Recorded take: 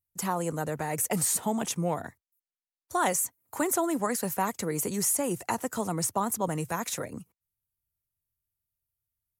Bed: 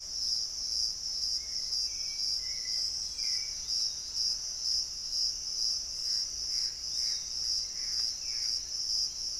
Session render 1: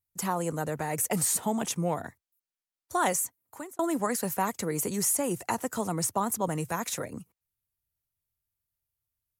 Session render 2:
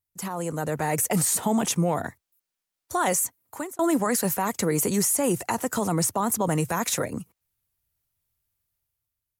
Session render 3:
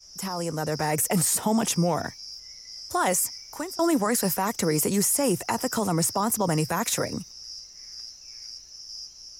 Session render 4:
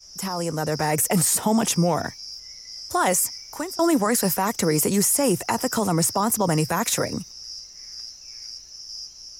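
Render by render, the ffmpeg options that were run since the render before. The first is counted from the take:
-filter_complex "[0:a]asplit=2[a][b];[a]atrim=end=3.79,asetpts=PTS-STARTPTS,afade=t=out:st=3.12:d=0.67[c];[b]atrim=start=3.79,asetpts=PTS-STARTPTS,afade=t=in:d=0.004:c=hsin[d];[c][d]concat=n=2:v=0:a=1"
-af "alimiter=limit=-22dB:level=0:latency=1:release=23,dynaudnorm=f=150:g=9:m=7.5dB"
-filter_complex "[1:a]volume=-8.5dB[a];[0:a][a]amix=inputs=2:normalize=0"
-af "volume=3dB"

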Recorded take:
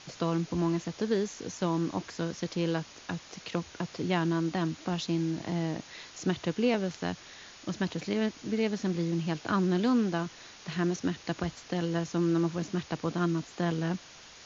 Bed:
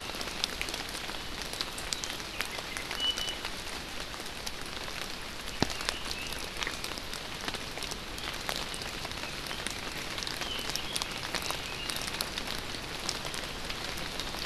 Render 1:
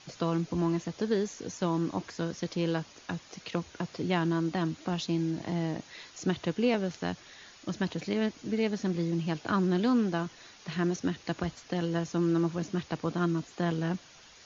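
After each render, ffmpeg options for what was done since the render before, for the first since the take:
-af "afftdn=nr=6:nf=-51"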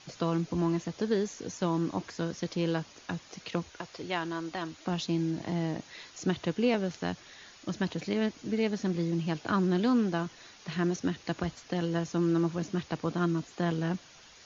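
-filter_complex "[0:a]asettb=1/sr,asplit=3[a][b][c];[a]atrim=end=3.694[d];[b]atrim=start=3.69:end=4.87,asetpts=PTS-STARTPTS,afade=t=in:d=0.004:c=qsin,afade=t=out:st=1.176:d=0.004:c=qsin,equalizer=f=180:t=o:w=1.8:g=-12.5[e];[c]atrim=start=4.866[f];[d][e]acrossfade=d=0.004:c1=hsin:c2=qsin[g];[g][f]acrossfade=d=0.004:c1=qsin:c2=hsin"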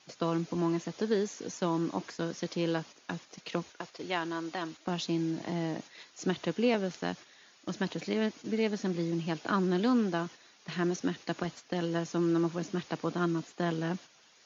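-af "highpass=180,agate=range=-7dB:threshold=-45dB:ratio=16:detection=peak"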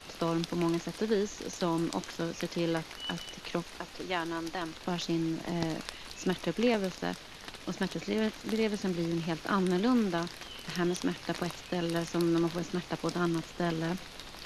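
-filter_complex "[1:a]volume=-9.5dB[a];[0:a][a]amix=inputs=2:normalize=0"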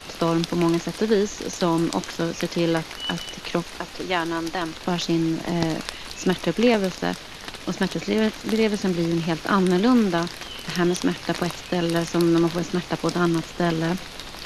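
-af "volume=9dB"

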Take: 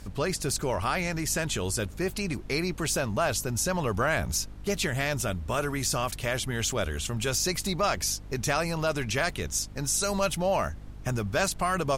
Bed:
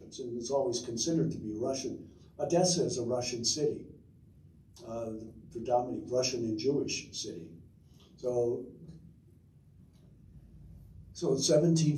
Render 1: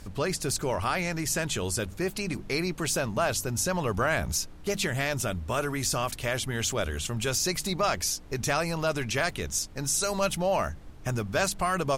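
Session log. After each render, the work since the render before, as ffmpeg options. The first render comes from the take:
-af "bandreject=f=50:t=h:w=4,bandreject=f=100:t=h:w=4,bandreject=f=150:t=h:w=4,bandreject=f=200:t=h:w=4,bandreject=f=250:t=h:w=4"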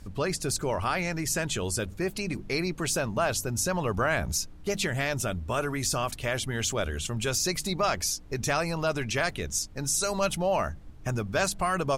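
-af "afftdn=nr=6:nf=-44"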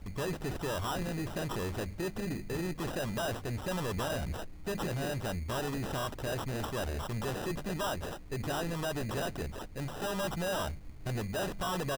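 -af "aresample=11025,asoftclip=type=tanh:threshold=-30.5dB,aresample=44100,acrusher=samples=20:mix=1:aa=0.000001"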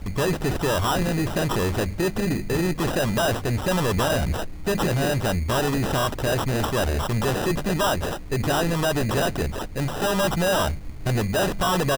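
-af "volume=12dB"

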